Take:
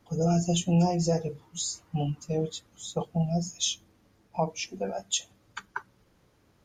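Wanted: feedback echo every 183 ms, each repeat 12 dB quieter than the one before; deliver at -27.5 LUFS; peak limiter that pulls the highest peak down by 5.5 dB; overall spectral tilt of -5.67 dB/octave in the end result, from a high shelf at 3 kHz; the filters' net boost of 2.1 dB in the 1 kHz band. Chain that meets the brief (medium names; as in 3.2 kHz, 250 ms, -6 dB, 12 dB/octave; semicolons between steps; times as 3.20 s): peaking EQ 1 kHz +4 dB; treble shelf 3 kHz -7.5 dB; peak limiter -19 dBFS; feedback delay 183 ms, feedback 25%, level -12 dB; trim +4 dB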